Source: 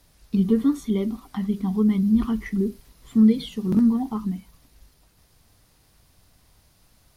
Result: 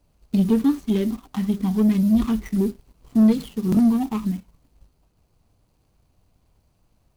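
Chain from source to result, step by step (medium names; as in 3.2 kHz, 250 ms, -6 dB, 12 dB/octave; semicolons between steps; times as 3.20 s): median filter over 25 samples; treble shelf 3.1 kHz +11 dB; waveshaping leveller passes 1; trim -1 dB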